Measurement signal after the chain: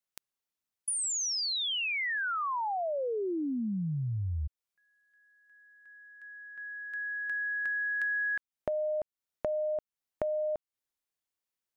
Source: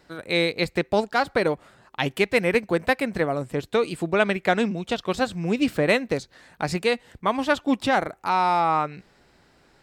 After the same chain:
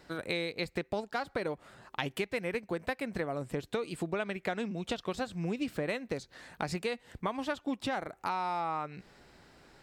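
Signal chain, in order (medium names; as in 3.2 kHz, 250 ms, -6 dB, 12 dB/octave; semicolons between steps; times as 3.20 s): compression 5:1, threshold -32 dBFS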